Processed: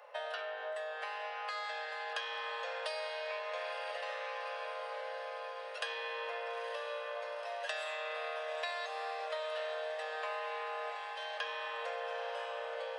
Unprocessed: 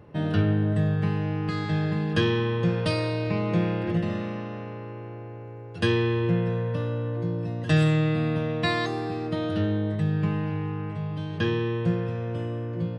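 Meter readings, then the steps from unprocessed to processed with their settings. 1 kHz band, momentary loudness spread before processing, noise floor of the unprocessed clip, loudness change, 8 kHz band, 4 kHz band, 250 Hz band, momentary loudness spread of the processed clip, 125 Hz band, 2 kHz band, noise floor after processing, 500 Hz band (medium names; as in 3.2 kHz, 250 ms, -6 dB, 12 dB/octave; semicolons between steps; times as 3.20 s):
-3.5 dB, 9 LU, -39 dBFS, -13.0 dB, no reading, -6.0 dB, under -40 dB, 3 LU, under -40 dB, -5.0 dB, -43 dBFS, -10.0 dB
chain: steep high-pass 520 Hz 72 dB/octave; compression 10:1, threshold -40 dBFS, peak gain reduction 17 dB; echo that smears into a reverb 926 ms, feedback 74%, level -8.5 dB; trim +3 dB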